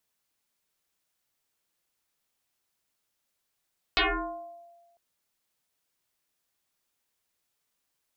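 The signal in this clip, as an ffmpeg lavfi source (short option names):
-f lavfi -i "aevalsrc='0.112*pow(10,-3*t/1.34)*sin(2*PI*687*t+11*pow(10,-3*t/0.84)*sin(2*PI*0.53*687*t))':d=1:s=44100"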